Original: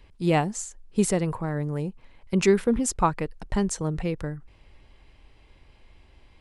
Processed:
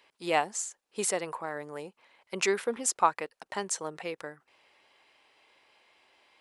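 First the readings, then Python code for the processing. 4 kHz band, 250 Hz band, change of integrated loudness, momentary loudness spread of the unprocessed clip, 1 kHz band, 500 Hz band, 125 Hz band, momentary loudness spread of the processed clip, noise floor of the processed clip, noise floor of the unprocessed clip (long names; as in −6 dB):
0.0 dB, −15.0 dB, −5.0 dB, 12 LU, −1.0 dB, −6.5 dB, −22.0 dB, 15 LU, −82 dBFS, −56 dBFS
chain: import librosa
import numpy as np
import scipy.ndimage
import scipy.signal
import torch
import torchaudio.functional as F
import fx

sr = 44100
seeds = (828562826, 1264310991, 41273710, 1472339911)

y = scipy.signal.sosfilt(scipy.signal.butter(2, 600.0, 'highpass', fs=sr, output='sos'), x)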